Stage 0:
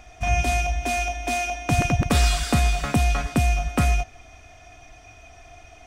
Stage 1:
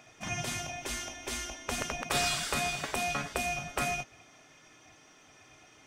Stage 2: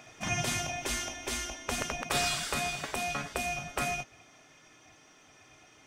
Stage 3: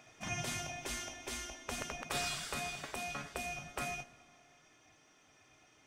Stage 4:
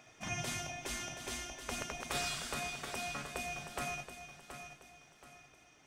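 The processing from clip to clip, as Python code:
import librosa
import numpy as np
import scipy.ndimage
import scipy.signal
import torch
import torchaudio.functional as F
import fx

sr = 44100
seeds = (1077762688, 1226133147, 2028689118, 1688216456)

y1 = fx.spec_gate(x, sr, threshold_db=-10, keep='weak')
y1 = y1 * 10.0 ** (-4.0 / 20.0)
y2 = fx.rider(y1, sr, range_db=10, speed_s=2.0)
y3 = fx.rev_freeverb(y2, sr, rt60_s=2.1, hf_ratio=0.85, predelay_ms=5, drr_db=17.0)
y3 = y3 * 10.0 ** (-7.5 / 20.0)
y4 = fx.echo_feedback(y3, sr, ms=726, feedback_pct=36, wet_db=-9.5)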